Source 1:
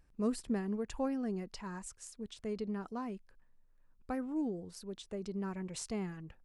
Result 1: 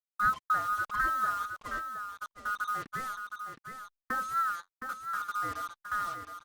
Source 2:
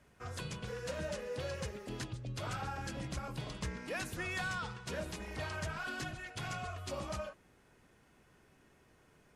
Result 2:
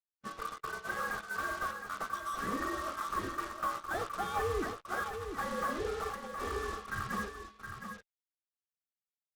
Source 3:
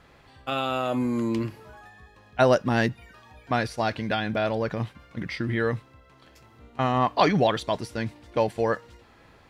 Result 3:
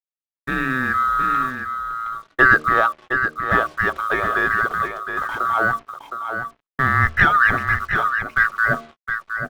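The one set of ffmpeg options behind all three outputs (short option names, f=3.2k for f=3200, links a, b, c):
-filter_complex "[0:a]afftfilt=real='real(if(lt(b,960),b+48*(1-2*mod(floor(b/48),2)),b),0)':imag='imag(if(lt(b,960),b+48*(1-2*mod(floor(b/48),2)),b),0)':win_size=2048:overlap=0.75,asplit=2[a][b];[b]adynamicsmooth=sensitivity=5:basefreq=650,volume=2dB[c];[a][c]amix=inputs=2:normalize=0,lowpass=2.1k,bandreject=f=76.58:t=h:w=4,bandreject=f=153.16:t=h:w=4,bandreject=f=229.74:t=h:w=4,bandreject=f=306.32:t=h:w=4,bandreject=f=382.9:t=h:w=4,bandreject=f=459.48:t=h:w=4,bandreject=f=536.06:t=h:w=4,bandreject=f=612.64:t=h:w=4,bandreject=f=689.22:t=h:w=4,acrusher=bits=6:mix=0:aa=0.5,agate=range=-55dB:threshold=-39dB:ratio=16:detection=peak,aecho=1:1:716:0.422" -ar 48000 -c:a libopus -b:a 64k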